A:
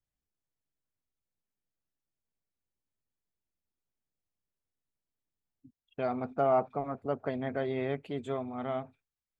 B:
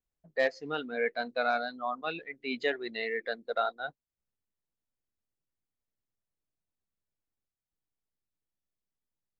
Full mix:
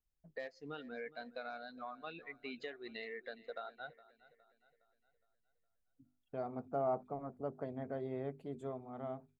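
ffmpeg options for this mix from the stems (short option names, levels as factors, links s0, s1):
-filter_complex "[0:a]equalizer=f=2700:w=0.77:g=-13,bandreject=f=50:t=h:w=6,bandreject=f=100:t=h:w=6,bandreject=f=150:t=h:w=6,bandreject=f=200:t=h:w=6,bandreject=f=250:t=h:w=6,bandreject=f=300:t=h:w=6,bandreject=f=350:t=h:w=6,bandreject=f=400:t=h:w=6,adelay=350,volume=0.447[s0];[1:a]lowshelf=f=110:g=11,acompressor=threshold=0.0141:ratio=6,volume=0.531,asplit=2[s1][s2];[s2]volume=0.112,aecho=0:1:413|826|1239|1652|2065|2478:1|0.45|0.202|0.0911|0.041|0.0185[s3];[s0][s1][s3]amix=inputs=3:normalize=0"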